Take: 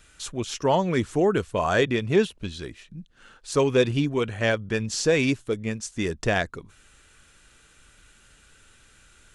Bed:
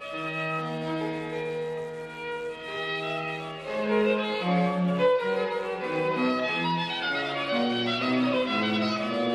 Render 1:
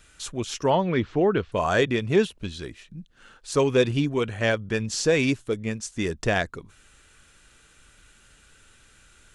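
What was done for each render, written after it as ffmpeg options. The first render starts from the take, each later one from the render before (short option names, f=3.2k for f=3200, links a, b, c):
-filter_complex "[0:a]asettb=1/sr,asplit=3[a][b][c];[a]atrim=end=0.704[d];[b]atrim=start=0.7:end=1.52,asetpts=PTS-STARTPTS,afade=t=in:d=0.004:c=qsin,afade=t=out:st=0.816:d=0.004:c=qsin,lowpass=f=4.2k:w=0.5412,lowpass=f=4.2k:w=1.3066[e];[c]atrim=start=1.516[f];[d][e]acrossfade=d=0.004:c1=hsin:c2=qsin[g];[g][f]acrossfade=d=0.004:c1=qsin:c2=hsin"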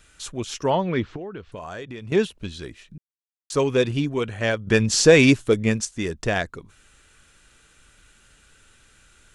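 -filter_complex "[0:a]asettb=1/sr,asplit=3[a][b][c];[a]atrim=end=1.164[d];[b]atrim=start=1.16:end=2.12,asetpts=PTS-STARTPTS,afade=t=in:d=0.004:c=qsin,afade=t=out:st=0.956:d=0.004:c=qsin,acompressor=threshold=-34dB:ratio=4:attack=3.2:release=140:knee=1:detection=peak[e];[c]atrim=start=2.116[f];[d][e]acrossfade=d=0.004:c1=hsin:c2=qsin[g];[g][f]acrossfade=d=0.004:c1=qsin:c2=hsin,asplit=5[h][i][j][k][l];[h]atrim=end=2.98,asetpts=PTS-STARTPTS,afade=t=out:st=2.976:d=0.004:c=hsin[m];[i]atrim=start=2.98:end=3.5,asetpts=PTS-STARTPTS,volume=0[n];[j]atrim=start=3.5:end=4.672,asetpts=PTS-STARTPTS,afade=t=in:d=0.004:c=hsin[o];[k]atrim=start=4.668:end=5.852,asetpts=PTS-STARTPTS,volume=8dB[p];[l]atrim=start=5.848[q];[m][n][o]concat=n=3:v=0:a=1[r];[r][p]acrossfade=d=0.004:c1=hsin:c2=hsin[s];[s][q]acrossfade=d=0.004:c1=hsin:c2=hsin"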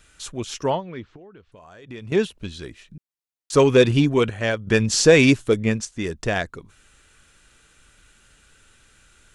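-filter_complex "[0:a]asettb=1/sr,asplit=3[a][b][c];[a]atrim=end=3.534[d];[b]atrim=start=3.53:end=4.3,asetpts=PTS-STARTPTS,afade=t=in:d=0.004:c=qsin,afade=t=out:st=0.766:d=0.004:c=qsin,acontrast=63[e];[c]atrim=start=4.296[f];[d][e]acrossfade=d=0.004:c1=hsin:c2=qsin[g];[g][f]acrossfade=d=0.004:c1=qsin:c2=hsin,asettb=1/sr,asplit=3[h][i][j];[h]atrim=end=5.604[k];[i]atrim=start=5.6:end=6.04,asetpts=PTS-STARTPTS,afade=t=in:d=0.004:c=qsin,afade=t=out:st=0.436:d=0.004:c=qsin,highshelf=f=6.6k:g=-7[l];[j]atrim=start=6.036[m];[k][l]acrossfade=d=0.004:c1=hsin:c2=qsin[n];[n][m]acrossfade=d=0.004:c1=qsin:c2=hsin,asplit=3[o][p][q];[o]atrim=end=0.81,asetpts=PTS-STARTPTS,afade=t=out:st=0.67:d=0.14:c=qsin:silence=0.281838[r];[p]atrim=start=0.81:end=1.82,asetpts=PTS-STARTPTS,volume=-11dB[s];[q]atrim=start=1.82,asetpts=PTS-STARTPTS,afade=t=in:d=0.14:c=qsin:silence=0.281838[t];[r][s][t]concat=n=3:v=0:a=1"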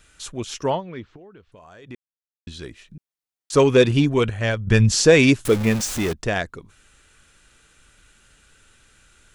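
-filter_complex "[0:a]asettb=1/sr,asplit=3[a][b][c];[a]atrim=end=3.984[d];[b]atrim=start=3.98:end=4.92,asetpts=PTS-STARTPTS,afade=t=in:d=0.004:c=qsin,afade=t=out:st=0.936:d=0.004:c=qsin,asubboost=boost=12:cutoff=160[e];[c]atrim=start=4.916[f];[d][e]acrossfade=d=0.004:c1=hsin:c2=qsin[g];[g][f]acrossfade=d=0.004:c1=qsin:c2=hsin,asettb=1/sr,asplit=3[h][i][j];[h]atrim=end=5.454[k];[i]atrim=start=5.45:end=6.13,asetpts=PTS-STARTPTS,afade=t=in:d=0.004:c=qsin,afade=t=out:st=0.676:d=0.004:c=qsin,aeval=exprs='val(0)+0.5*0.0668*sgn(val(0))':c=same[l];[j]atrim=start=6.126[m];[k][l]acrossfade=d=0.004:c1=hsin:c2=qsin[n];[n][m]acrossfade=d=0.004:c1=qsin:c2=hsin,asplit=3[o][p][q];[o]atrim=end=1.95,asetpts=PTS-STARTPTS,afade=t=out:st=1.946:d=0.004:c=hsin[r];[p]atrim=start=1.95:end=2.47,asetpts=PTS-STARTPTS,volume=0[s];[q]atrim=start=2.47,asetpts=PTS-STARTPTS,afade=t=in:d=0.004:c=hsin[t];[r][s][t]concat=n=3:v=0:a=1"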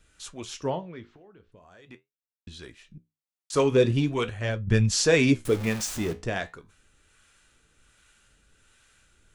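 -filter_complex "[0:a]acrossover=split=560[a][b];[a]aeval=exprs='val(0)*(1-0.5/2+0.5/2*cos(2*PI*1.3*n/s))':c=same[c];[b]aeval=exprs='val(0)*(1-0.5/2-0.5/2*cos(2*PI*1.3*n/s))':c=same[d];[c][d]amix=inputs=2:normalize=0,flanger=delay=9.6:depth=9.2:regen=-64:speed=0.42:shape=sinusoidal"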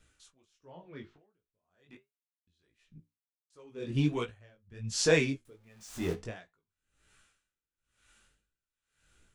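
-af "flanger=delay=16.5:depth=6.1:speed=1.4,aeval=exprs='val(0)*pow(10,-31*(0.5-0.5*cos(2*PI*0.98*n/s))/20)':c=same"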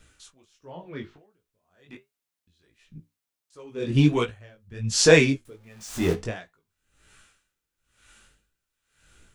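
-af "volume=9.5dB"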